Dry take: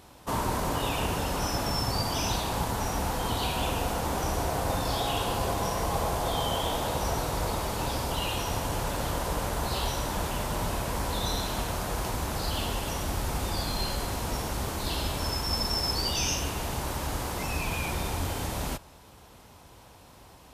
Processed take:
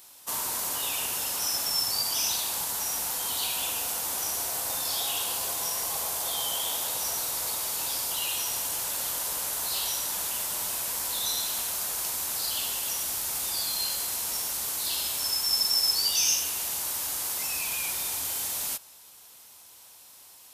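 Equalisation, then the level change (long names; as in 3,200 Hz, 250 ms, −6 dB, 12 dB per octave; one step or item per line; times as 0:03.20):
spectral tilt +4 dB per octave
high-shelf EQ 3,900 Hz +6.5 dB
−8.0 dB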